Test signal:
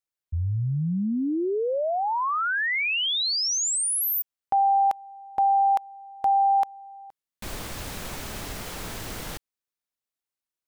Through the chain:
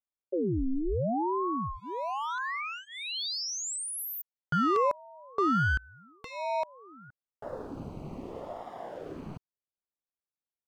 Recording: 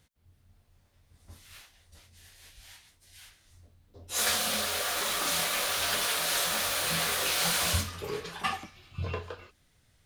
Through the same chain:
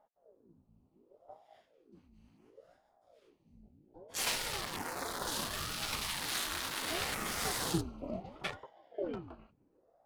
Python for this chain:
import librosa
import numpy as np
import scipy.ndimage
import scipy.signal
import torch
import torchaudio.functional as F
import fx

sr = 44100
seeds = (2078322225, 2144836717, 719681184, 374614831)

y = fx.wiener(x, sr, points=25)
y = fx.high_shelf(y, sr, hz=8600.0, db=-5.0)
y = fx.filter_lfo_notch(y, sr, shape='saw_down', hz=0.42, low_hz=320.0, high_hz=4000.0, q=1.2)
y = fx.ring_lfo(y, sr, carrier_hz=430.0, swing_pct=70, hz=0.69)